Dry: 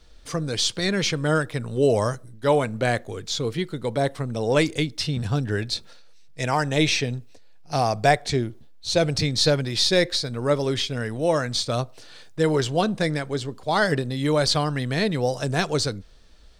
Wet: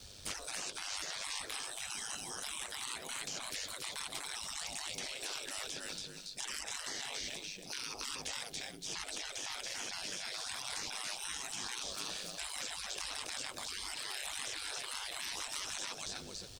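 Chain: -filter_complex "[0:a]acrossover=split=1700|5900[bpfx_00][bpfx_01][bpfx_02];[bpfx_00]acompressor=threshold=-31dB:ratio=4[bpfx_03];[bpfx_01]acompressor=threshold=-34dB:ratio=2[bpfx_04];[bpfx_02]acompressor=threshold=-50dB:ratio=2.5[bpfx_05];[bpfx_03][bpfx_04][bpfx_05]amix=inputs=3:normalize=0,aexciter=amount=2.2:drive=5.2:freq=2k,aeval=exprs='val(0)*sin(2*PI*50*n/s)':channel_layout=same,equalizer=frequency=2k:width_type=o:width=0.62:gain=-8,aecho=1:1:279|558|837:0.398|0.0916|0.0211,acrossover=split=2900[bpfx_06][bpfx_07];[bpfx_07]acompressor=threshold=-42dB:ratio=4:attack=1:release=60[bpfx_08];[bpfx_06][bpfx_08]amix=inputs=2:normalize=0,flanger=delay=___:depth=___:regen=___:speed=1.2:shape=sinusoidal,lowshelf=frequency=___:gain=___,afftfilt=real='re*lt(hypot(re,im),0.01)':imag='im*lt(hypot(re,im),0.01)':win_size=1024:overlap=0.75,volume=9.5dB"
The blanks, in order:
1.3, 8, -84, 270, -3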